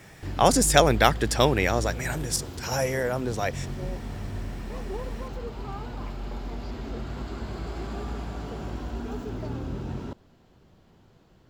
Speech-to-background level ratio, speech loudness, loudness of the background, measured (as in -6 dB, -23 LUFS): 12.0 dB, -23.5 LUFS, -35.5 LUFS